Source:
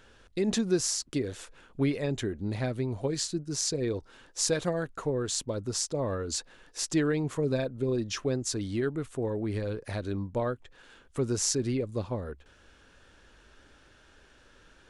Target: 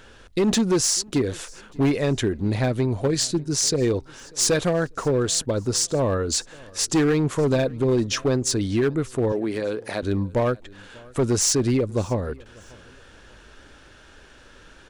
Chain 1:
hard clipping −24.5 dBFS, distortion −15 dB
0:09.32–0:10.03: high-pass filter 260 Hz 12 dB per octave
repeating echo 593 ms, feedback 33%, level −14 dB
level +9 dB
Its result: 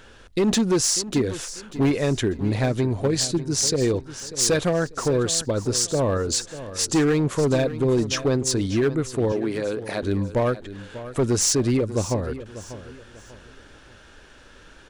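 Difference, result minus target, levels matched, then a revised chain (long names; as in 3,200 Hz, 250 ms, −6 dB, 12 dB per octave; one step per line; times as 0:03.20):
echo-to-direct +10.5 dB
hard clipping −24.5 dBFS, distortion −15 dB
0:09.32–0:10.03: high-pass filter 260 Hz 12 dB per octave
repeating echo 593 ms, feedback 33%, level −24.5 dB
level +9 dB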